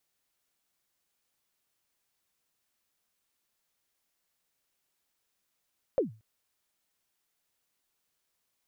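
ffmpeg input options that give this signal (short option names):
-f lavfi -i "aevalsrc='0.112*pow(10,-3*t/0.32)*sin(2*PI*(590*0.13/log(110/590)*(exp(log(110/590)*min(t,0.13)/0.13)-1)+110*max(t-0.13,0)))':d=0.23:s=44100"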